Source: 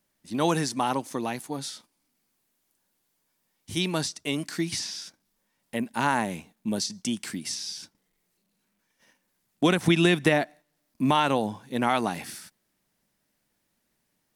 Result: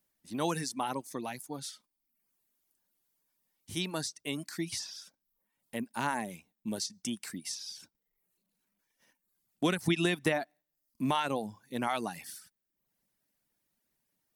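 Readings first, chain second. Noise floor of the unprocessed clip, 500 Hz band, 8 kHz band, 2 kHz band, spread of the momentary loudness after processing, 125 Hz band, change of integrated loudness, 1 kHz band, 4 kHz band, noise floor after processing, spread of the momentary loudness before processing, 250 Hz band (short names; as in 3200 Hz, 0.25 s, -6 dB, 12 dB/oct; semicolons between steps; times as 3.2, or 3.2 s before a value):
-76 dBFS, -8.0 dB, -5.5 dB, -7.5 dB, 14 LU, -8.5 dB, -7.5 dB, -8.0 dB, -7.0 dB, -85 dBFS, 14 LU, -8.0 dB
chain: reverb removal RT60 0.67 s; high shelf 11000 Hz +9 dB; gain -7 dB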